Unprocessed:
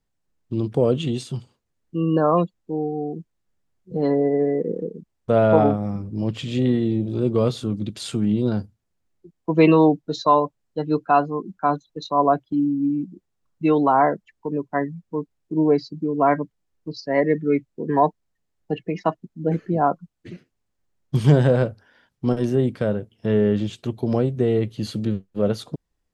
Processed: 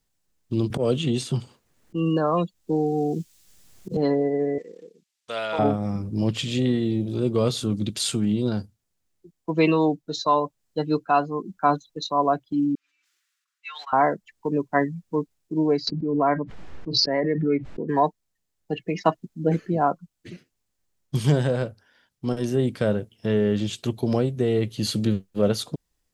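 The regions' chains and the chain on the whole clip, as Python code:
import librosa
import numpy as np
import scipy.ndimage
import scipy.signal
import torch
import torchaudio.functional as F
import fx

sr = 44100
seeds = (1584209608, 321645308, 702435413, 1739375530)

y = fx.chain(x, sr, fx.auto_swell(attack_ms=145.0),
    fx.band_squash(depth_pct=70), at=(0.7, 3.97))
y = fx.chain(y, sr, fx.bandpass_q(hz=2700.0, q=0.72),
    fx.high_shelf(hz=2800.0, db=12.0), at=(4.58, 5.59))
y = fx.chain(y, sr, fx.steep_highpass(hz=1400.0, slope=36),
    fx.tilt_eq(slope=-4.0),
    fx.sustainer(db_per_s=25.0), at=(12.75, 13.93))
y = fx.chain(y, sr, fx.lowpass(hz=1900.0, slope=12),
    fx.pre_swell(db_per_s=29.0), at=(15.87, 17.89))
y = fx.high_shelf(y, sr, hz=3000.0, db=10.5)
y = fx.rider(y, sr, range_db=4, speed_s=0.5)
y = y * 10.0 ** (-2.5 / 20.0)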